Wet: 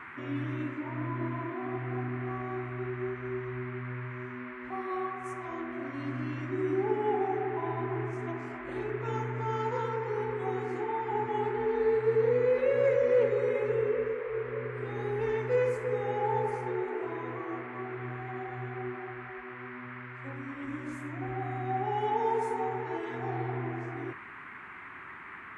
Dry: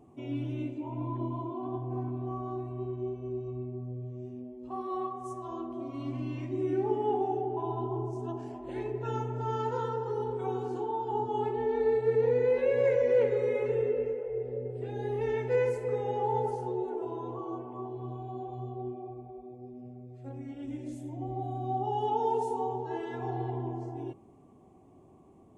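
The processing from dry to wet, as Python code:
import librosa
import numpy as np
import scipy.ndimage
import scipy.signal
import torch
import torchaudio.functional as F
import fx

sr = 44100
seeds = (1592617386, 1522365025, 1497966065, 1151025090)

y = fx.dmg_noise_band(x, sr, seeds[0], low_hz=950.0, high_hz=2200.0, level_db=-46.0)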